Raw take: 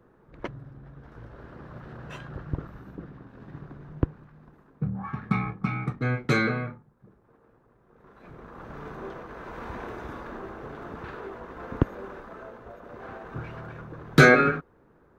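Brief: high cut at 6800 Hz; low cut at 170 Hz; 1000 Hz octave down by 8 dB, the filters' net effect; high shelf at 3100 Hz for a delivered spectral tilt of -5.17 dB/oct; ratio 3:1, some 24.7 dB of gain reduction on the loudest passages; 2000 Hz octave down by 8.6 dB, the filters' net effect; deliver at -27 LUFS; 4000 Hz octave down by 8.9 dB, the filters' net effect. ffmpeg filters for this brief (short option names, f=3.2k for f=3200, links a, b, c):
-af "highpass=170,lowpass=6.8k,equalizer=f=1k:t=o:g=-8,equalizer=f=2k:t=o:g=-5.5,highshelf=f=3.1k:g=-7,equalizer=f=4k:t=o:g=-3,acompressor=threshold=-50dB:ratio=3,volume=24.5dB"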